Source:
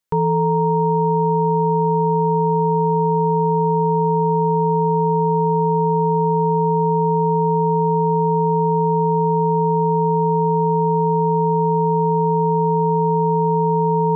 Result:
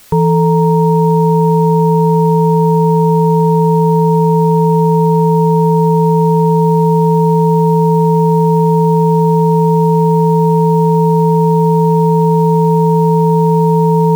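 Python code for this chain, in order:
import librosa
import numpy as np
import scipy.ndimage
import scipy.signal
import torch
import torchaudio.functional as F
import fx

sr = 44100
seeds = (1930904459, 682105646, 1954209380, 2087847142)

p1 = fx.highpass(x, sr, hz=62.0, slope=6)
p2 = fx.tilt_eq(p1, sr, slope=-2.5)
p3 = fx.quant_dither(p2, sr, seeds[0], bits=6, dither='triangular')
y = p2 + F.gain(torch.from_numpy(p3), -5.5).numpy()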